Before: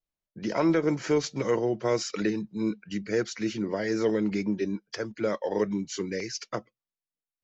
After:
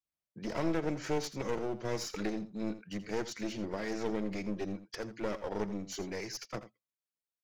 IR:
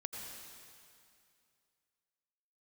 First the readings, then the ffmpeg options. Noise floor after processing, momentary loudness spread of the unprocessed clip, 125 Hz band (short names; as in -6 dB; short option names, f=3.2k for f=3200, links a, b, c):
under -85 dBFS, 8 LU, -7.0 dB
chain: -filter_complex "[0:a]highpass=59,adynamicequalizer=threshold=0.0251:dfrequency=530:dqfactor=0.82:tfrequency=530:tqfactor=0.82:attack=5:release=100:ratio=0.375:range=1.5:mode=cutabove:tftype=bell,aeval=exprs='clip(val(0),-1,0.02)':c=same,asplit=2[a][b];[b]aecho=0:1:83:0.211[c];[a][c]amix=inputs=2:normalize=0,volume=-5dB"